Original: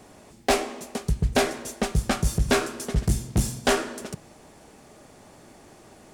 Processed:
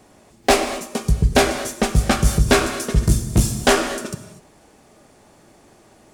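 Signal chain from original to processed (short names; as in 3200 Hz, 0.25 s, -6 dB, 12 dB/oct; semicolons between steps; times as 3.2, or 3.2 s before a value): spectral noise reduction 8 dB; non-linear reverb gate 0.27 s flat, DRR 8.5 dB; gain +6.5 dB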